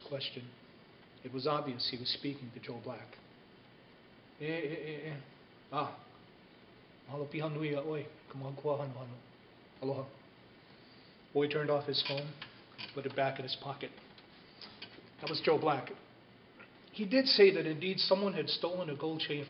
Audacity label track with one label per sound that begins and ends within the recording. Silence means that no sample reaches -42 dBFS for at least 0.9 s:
4.410000	5.950000	sound
7.090000	10.050000	sound